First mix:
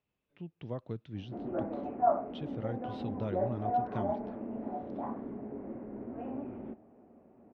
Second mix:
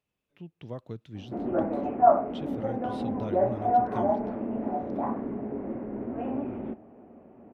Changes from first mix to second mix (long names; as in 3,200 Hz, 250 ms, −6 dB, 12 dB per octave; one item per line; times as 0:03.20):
background +7.5 dB
master: remove high-frequency loss of the air 150 metres